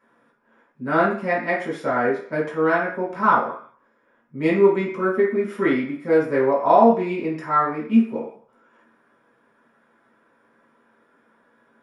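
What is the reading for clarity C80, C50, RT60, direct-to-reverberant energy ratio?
9.5 dB, 4.5 dB, 0.50 s, -6.5 dB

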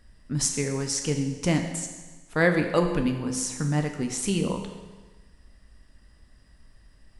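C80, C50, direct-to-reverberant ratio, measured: 8.5 dB, 7.0 dB, 4.0 dB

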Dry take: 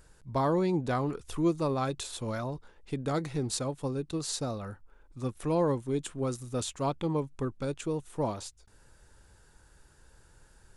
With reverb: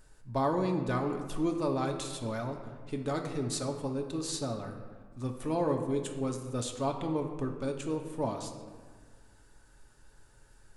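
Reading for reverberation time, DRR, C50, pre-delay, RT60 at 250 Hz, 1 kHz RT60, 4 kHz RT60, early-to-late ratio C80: 1.6 s, 2.5 dB, 7.0 dB, 3 ms, 2.0 s, 1.6 s, 1.0 s, 8.5 dB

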